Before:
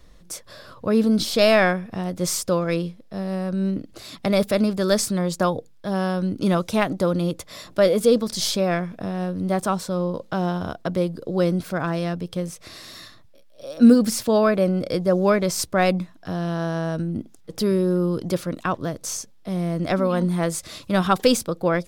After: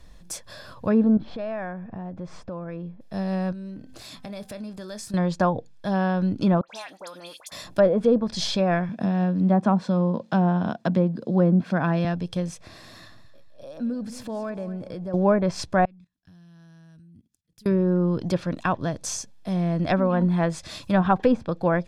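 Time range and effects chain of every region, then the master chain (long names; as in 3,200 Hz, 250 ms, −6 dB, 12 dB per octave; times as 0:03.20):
0:01.17–0:03.01: low-pass filter 1,400 Hz + downward compressor 2.5 to 1, threshold −35 dBFS
0:03.52–0:05.14: double-tracking delay 24 ms −12.5 dB + hum removal 257 Hz, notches 8 + downward compressor 3 to 1, threshold −39 dBFS
0:06.61–0:07.52: high-pass filter 810 Hz + downward compressor 5 to 1, threshold −35 dBFS + all-pass dispersion highs, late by 75 ms, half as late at 2,000 Hz
0:08.89–0:12.05: high-pass filter 120 Hz 24 dB per octave + parametric band 220 Hz +8.5 dB 0.5 octaves
0:12.61–0:15.14: high-shelf EQ 2,300 Hz −11 dB + downward compressor 2 to 1, threshold −38 dBFS + repeating echo 227 ms, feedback 31%, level −14.5 dB
0:15.85–0:17.66: guitar amp tone stack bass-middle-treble 6-0-2 + output level in coarse steps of 17 dB
whole clip: treble cut that deepens with the level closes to 1,100 Hz, closed at −14.5 dBFS; comb filter 1.2 ms, depth 33%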